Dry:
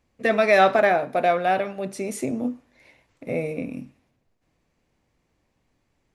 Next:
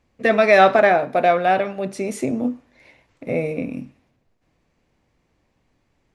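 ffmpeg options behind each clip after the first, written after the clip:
-af "highshelf=f=10k:g=-11.5,volume=4dB"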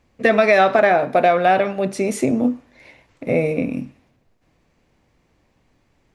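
-af "acompressor=threshold=-15dB:ratio=6,volume=4.5dB"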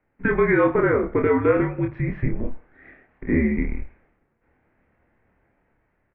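-filter_complex "[0:a]highpass=f=250:t=q:w=0.5412,highpass=f=250:t=q:w=1.307,lowpass=f=2.5k:t=q:w=0.5176,lowpass=f=2.5k:t=q:w=0.7071,lowpass=f=2.5k:t=q:w=1.932,afreqshift=-250,dynaudnorm=f=500:g=5:m=7dB,asplit=2[a][b];[b]adelay=27,volume=-4dB[c];[a][c]amix=inputs=2:normalize=0,volume=-6dB"

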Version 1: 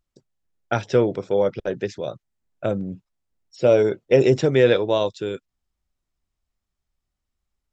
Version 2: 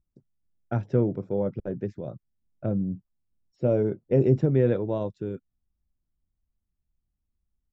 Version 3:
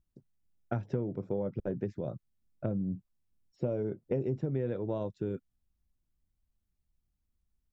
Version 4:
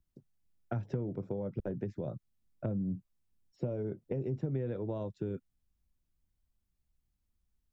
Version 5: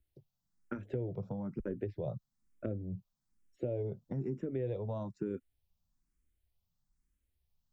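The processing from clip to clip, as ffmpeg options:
-af "firequalizer=gain_entry='entry(200,0);entry(450,-10);entry(3400,-27)':delay=0.05:min_phase=1,volume=1.5dB"
-af "acompressor=threshold=-29dB:ratio=6"
-filter_complex "[0:a]acrossover=split=170[a][b];[b]acompressor=threshold=-34dB:ratio=6[c];[a][c]amix=inputs=2:normalize=0"
-filter_complex "[0:a]asplit=2[a][b];[b]afreqshift=1.1[c];[a][c]amix=inputs=2:normalize=1,volume=2dB"

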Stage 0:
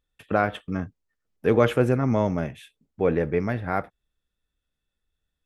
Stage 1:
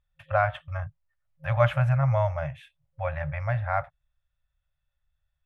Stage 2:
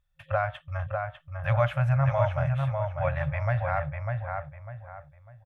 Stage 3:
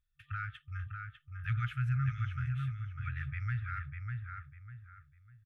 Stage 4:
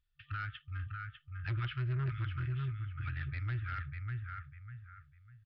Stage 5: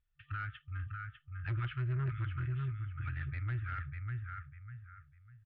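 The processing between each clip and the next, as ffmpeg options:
-af "afftfilt=real='re*(1-between(b*sr/4096,160,530))':imag='im*(1-between(b*sr/4096,160,530))':win_size=4096:overlap=0.75,bass=f=250:g=4,treble=f=4k:g=-14"
-filter_complex "[0:a]alimiter=limit=-16dB:level=0:latency=1:release=497,asplit=2[a][b];[b]adelay=599,lowpass=f=2.6k:p=1,volume=-4dB,asplit=2[c][d];[d]adelay=599,lowpass=f=2.6k:p=1,volume=0.32,asplit=2[e][f];[f]adelay=599,lowpass=f=2.6k:p=1,volume=0.32,asplit=2[g][h];[h]adelay=599,lowpass=f=2.6k:p=1,volume=0.32[i];[c][e][g][i]amix=inputs=4:normalize=0[j];[a][j]amix=inputs=2:normalize=0,volume=1.5dB"
-af "afftfilt=real='re*(1-between(b*sr/4096,140,1200))':imag='im*(1-between(b*sr/4096,140,1200))':win_size=4096:overlap=0.75,volume=-7.5dB"
-af "equalizer=f=3k:t=o:w=0.22:g=6,aresample=11025,asoftclip=type=tanh:threshold=-31dB,aresample=44100,volume=1dB"
-af "lowpass=2.5k"

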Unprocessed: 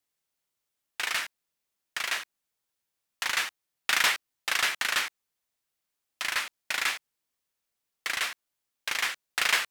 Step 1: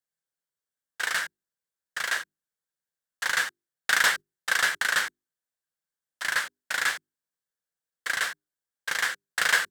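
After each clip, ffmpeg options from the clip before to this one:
-af "bandreject=f=50:t=h:w=6,bandreject=f=100:t=h:w=6,bandreject=f=150:t=h:w=6,bandreject=f=200:t=h:w=6,bandreject=f=250:t=h:w=6,bandreject=f=300:t=h:w=6,bandreject=f=350:t=h:w=6,bandreject=f=400:t=h:w=6,agate=range=-10dB:threshold=-34dB:ratio=16:detection=peak,equalizer=f=160:t=o:w=0.33:g=9,equalizer=f=500:t=o:w=0.33:g=6,equalizer=f=1.6k:t=o:w=0.33:g=10,equalizer=f=2.5k:t=o:w=0.33:g=-8,equalizer=f=8k:t=o:w=0.33:g=4"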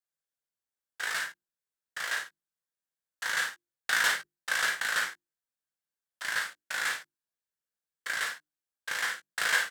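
-af "aecho=1:1:20|54|71:0.562|0.473|0.141,volume=-6dB"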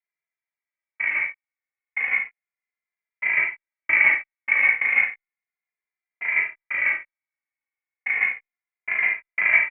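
-filter_complex "[0:a]highpass=f=1.8k:t=q:w=6.3,lowpass=f=3.3k:t=q:w=0.5098,lowpass=f=3.3k:t=q:w=0.6013,lowpass=f=3.3k:t=q:w=0.9,lowpass=f=3.3k:t=q:w=2.563,afreqshift=-3900,asplit=2[a][b];[b]adelay=2.5,afreqshift=-0.33[c];[a][c]amix=inputs=2:normalize=1,volume=1.5dB"

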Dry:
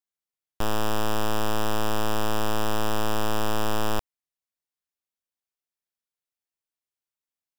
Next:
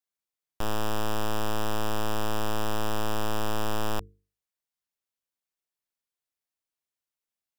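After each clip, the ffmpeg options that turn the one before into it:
-af "bandreject=f=50:t=h:w=6,bandreject=f=100:t=h:w=6,bandreject=f=150:t=h:w=6,bandreject=f=200:t=h:w=6,bandreject=f=250:t=h:w=6,bandreject=f=300:t=h:w=6,bandreject=f=350:t=h:w=6,bandreject=f=400:t=h:w=6,bandreject=f=450:t=h:w=6,alimiter=limit=-23dB:level=0:latency=1:release=11"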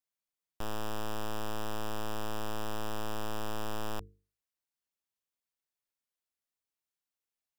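-af "asoftclip=type=tanh:threshold=-28dB,volume=-3dB"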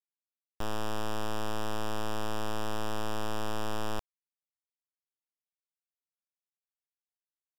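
-af "adynamicsmooth=sensitivity=6.5:basefreq=6.6k,acrusher=bits=5:mix=0:aa=0.000001,volume=1dB"

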